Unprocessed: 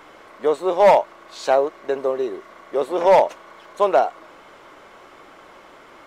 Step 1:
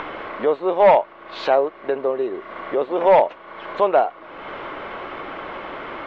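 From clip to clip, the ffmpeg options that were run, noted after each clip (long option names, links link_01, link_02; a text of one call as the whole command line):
ffmpeg -i in.wav -af "lowpass=frequency=3300:width=0.5412,lowpass=frequency=3300:width=1.3066,acompressor=mode=upward:threshold=-19dB:ratio=2.5" out.wav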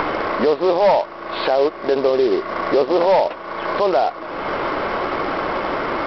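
ffmpeg -i in.wav -af "highshelf=frequency=2300:gain=-9.5,aresample=11025,acrusher=bits=4:mode=log:mix=0:aa=0.000001,aresample=44100,alimiter=level_in=19dB:limit=-1dB:release=50:level=0:latency=1,volume=-7.5dB" out.wav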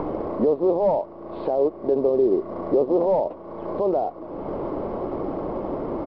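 ffmpeg -i in.wav -af "firequalizer=gain_entry='entry(240,0);entry(1000,-12);entry(1500,-26)':delay=0.05:min_phase=1" out.wav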